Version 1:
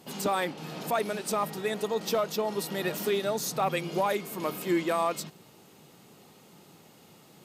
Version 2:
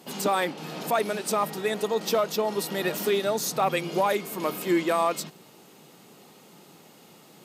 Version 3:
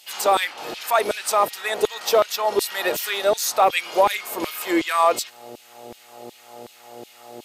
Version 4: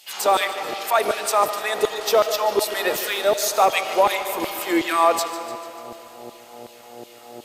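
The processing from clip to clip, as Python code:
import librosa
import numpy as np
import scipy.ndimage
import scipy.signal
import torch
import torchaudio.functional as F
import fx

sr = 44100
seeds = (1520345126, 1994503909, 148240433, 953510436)

y1 = scipy.signal.sosfilt(scipy.signal.butter(2, 160.0, 'highpass', fs=sr, output='sos'), x)
y1 = y1 * 10.0 ** (3.5 / 20.0)
y2 = fx.dmg_buzz(y1, sr, base_hz=120.0, harmonics=7, level_db=-39.0, tilt_db=-6, odd_only=False)
y2 = fx.filter_lfo_highpass(y2, sr, shape='saw_down', hz=2.7, low_hz=330.0, high_hz=3300.0, q=1.4)
y2 = y2 * 10.0 ** (5.5 / 20.0)
y3 = fx.echo_feedback(y2, sr, ms=148, feedback_pct=59, wet_db=-14)
y3 = fx.rev_freeverb(y3, sr, rt60_s=3.2, hf_ratio=0.75, predelay_ms=35, drr_db=10.5)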